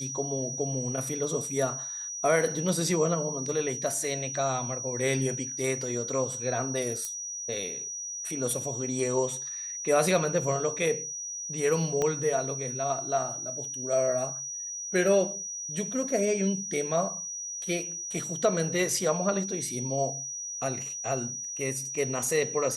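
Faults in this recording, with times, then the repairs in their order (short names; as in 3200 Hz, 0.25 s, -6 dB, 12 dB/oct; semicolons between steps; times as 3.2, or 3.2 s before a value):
tone 5800 Hz -34 dBFS
7.05 pop -19 dBFS
12.02 pop -15 dBFS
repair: de-click; notch 5800 Hz, Q 30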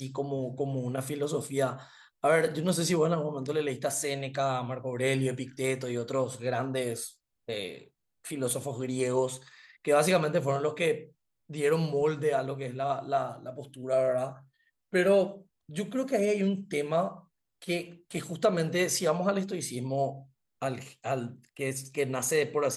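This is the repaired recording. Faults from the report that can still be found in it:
12.02 pop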